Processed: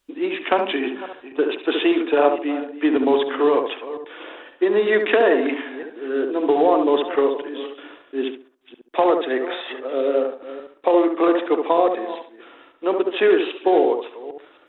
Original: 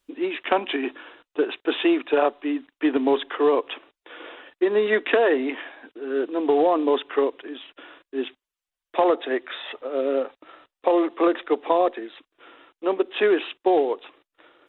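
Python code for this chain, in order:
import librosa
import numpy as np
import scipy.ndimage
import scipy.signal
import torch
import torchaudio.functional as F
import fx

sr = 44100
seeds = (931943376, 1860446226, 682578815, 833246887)

p1 = fx.reverse_delay(x, sr, ms=265, wet_db=-14.0)
p2 = p1 + fx.echo_tape(p1, sr, ms=70, feedback_pct=33, wet_db=-3, lp_hz=1100.0, drive_db=8.0, wow_cents=9, dry=0)
y = p2 * 10.0 ** (2.0 / 20.0)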